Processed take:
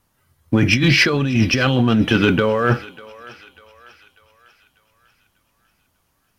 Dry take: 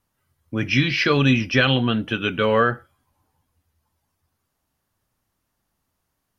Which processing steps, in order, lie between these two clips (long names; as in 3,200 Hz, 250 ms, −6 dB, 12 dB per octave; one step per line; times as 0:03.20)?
dynamic equaliser 2,800 Hz, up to −7 dB, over −35 dBFS, Q 0.78
compressor whose output falls as the input rises −25 dBFS, ratio −1
leveller curve on the samples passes 1
feedback echo with a high-pass in the loop 595 ms, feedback 52%, high-pass 650 Hz, level −18 dB
level +6 dB